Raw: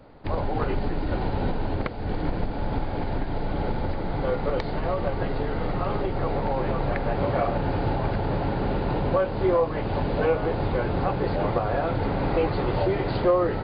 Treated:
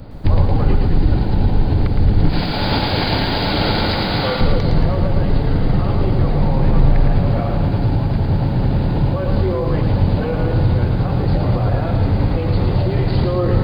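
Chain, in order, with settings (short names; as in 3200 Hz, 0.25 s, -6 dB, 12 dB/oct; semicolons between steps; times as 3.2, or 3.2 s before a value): 2.29–4.41 tilt +4.5 dB/oct; limiter -21.5 dBFS, peak gain reduction 10.5 dB; tone controls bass +14 dB, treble +12 dB; vocal rider 0.5 s; lo-fi delay 0.112 s, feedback 55%, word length 10-bit, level -5 dB; gain +4 dB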